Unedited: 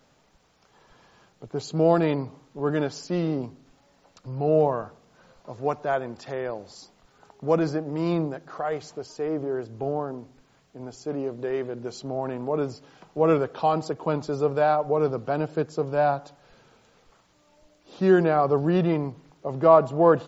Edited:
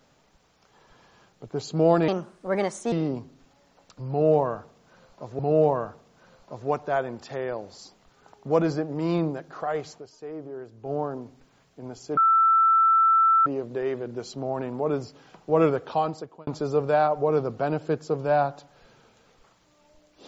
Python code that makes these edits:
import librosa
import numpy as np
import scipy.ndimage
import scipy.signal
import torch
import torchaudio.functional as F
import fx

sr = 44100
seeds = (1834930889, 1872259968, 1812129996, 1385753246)

y = fx.edit(x, sr, fx.speed_span(start_s=2.08, length_s=1.11, speed=1.32),
    fx.repeat(start_s=4.36, length_s=1.3, count=2),
    fx.fade_down_up(start_s=8.87, length_s=1.06, db=-9.0, fade_s=0.13),
    fx.insert_tone(at_s=11.14, length_s=1.29, hz=1330.0, db=-15.5),
    fx.fade_out_span(start_s=13.54, length_s=0.61), tone=tone)